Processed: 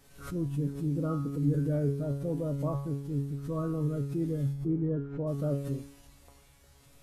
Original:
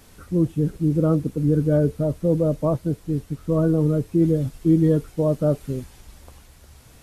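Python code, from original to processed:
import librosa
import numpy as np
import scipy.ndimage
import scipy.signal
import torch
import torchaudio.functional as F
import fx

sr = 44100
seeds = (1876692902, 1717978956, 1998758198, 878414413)

y = fx.lowpass(x, sr, hz=fx.line((4.52, 1100.0), (5.26, 1600.0)), slope=12, at=(4.52, 5.26), fade=0.02)
y = fx.comb_fb(y, sr, f0_hz=140.0, decay_s=0.61, harmonics='all', damping=0.0, mix_pct=90)
y = fx.pre_swell(y, sr, db_per_s=100.0)
y = y * 10.0 ** (3.5 / 20.0)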